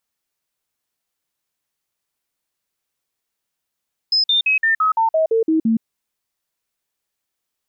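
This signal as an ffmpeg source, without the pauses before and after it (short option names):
-f lavfi -i "aevalsrc='0.224*clip(min(mod(t,0.17),0.12-mod(t,0.17))/0.005,0,1)*sin(2*PI*5100*pow(2,-floor(t/0.17)/2)*mod(t,0.17))':d=1.7:s=44100"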